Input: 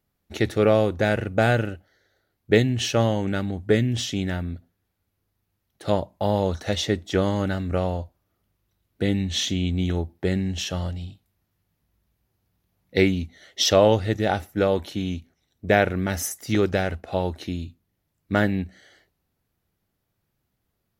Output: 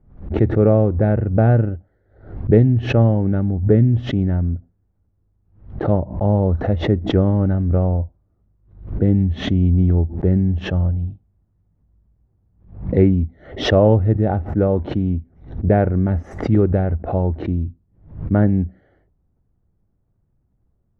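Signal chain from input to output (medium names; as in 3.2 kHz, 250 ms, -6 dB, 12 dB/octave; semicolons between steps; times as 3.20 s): low-pass 1.3 kHz 12 dB/octave; tilt EQ -3.5 dB/octave; swell ahead of each attack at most 110 dB/s; trim -1 dB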